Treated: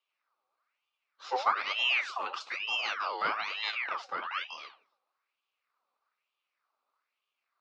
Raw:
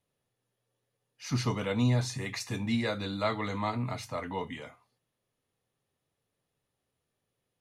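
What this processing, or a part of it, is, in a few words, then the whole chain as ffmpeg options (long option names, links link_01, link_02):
voice changer toy: -af "aeval=exprs='val(0)*sin(2*PI*1800*n/s+1800*0.65/1.1*sin(2*PI*1.1*n/s))':channel_layout=same,highpass=530,equalizer=frequency=1200:width_type=q:width=4:gain=9,equalizer=frequency=1800:width_type=q:width=4:gain=-6,equalizer=frequency=3200:width_type=q:width=4:gain=-5,lowpass=frequency=4700:width=0.5412,lowpass=frequency=4700:width=1.3066,volume=2.5dB"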